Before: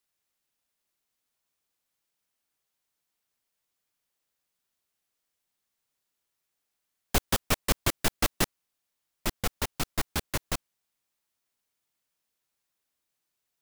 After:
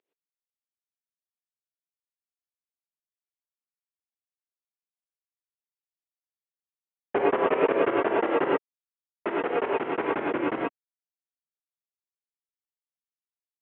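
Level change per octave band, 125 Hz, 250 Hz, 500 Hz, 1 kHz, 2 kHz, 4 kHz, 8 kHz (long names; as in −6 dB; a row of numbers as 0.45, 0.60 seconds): −11.0 dB, +7.0 dB, +13.5 dB, +8.0 dB, +3.0 dB, −11.0 dB, below −40 dB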